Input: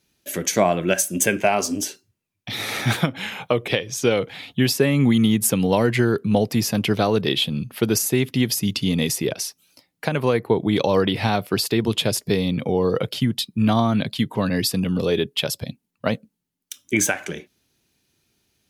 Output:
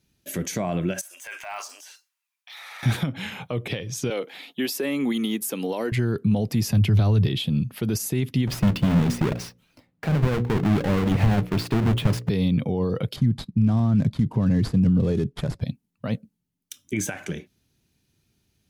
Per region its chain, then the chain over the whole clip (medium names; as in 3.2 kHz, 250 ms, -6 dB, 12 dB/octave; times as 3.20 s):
1.01–2.83 s: de-esser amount 95% + inverse Chebyshev high-pass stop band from 150 Hz, stop band 80 dB + transient shaper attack -6 dB, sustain +6 dB
4.10–5.92 s: high-pass 290 Hz 24 dB/octave + peaking EQ 14 kHz +7.5 dB 0.5 oct
6.69–7.37 s: peaking EQ 99 Hz +13 dB + band-stop 480 Hz, Q 8.6 + three bands compressed up and down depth 40%
8.47–12.29 s: square wave that keeps the level + tone controls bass 0 dB, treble -12 dB + hum notches 60/120/180/240/300/360/420/480/540 Hz
13.16–15.61 s: median filter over 15 samples + steep low-pass 12 kHz 48 dB/octave + bass shelf 240 Hz +8.5 dB
whole clip: peak limiter -15 dBFS; tone controls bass +10 dB, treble 0 dB; trim -4.5 dB